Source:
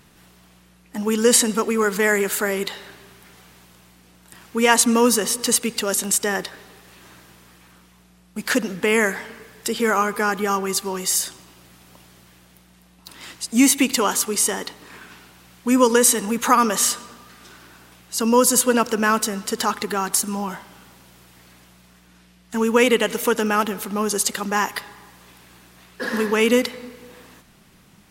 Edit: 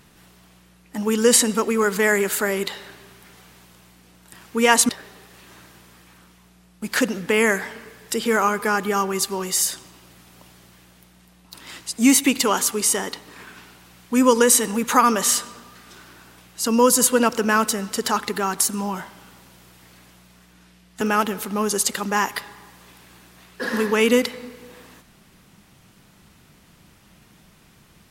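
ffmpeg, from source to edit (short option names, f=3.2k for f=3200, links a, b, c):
-filter_complex "[0:a]asplit=3[a][b][c];[a]atrim=end=4.892[d];[b]atrim=start=6.428:end=22.552[e];[c]atrim=start=23.408[f];[d][e]acrossfade=d=0.004:c1=hsin:c2=hsin[g];[g][f]acrossfade=d=0.004:c1=hsin:c2=hsin"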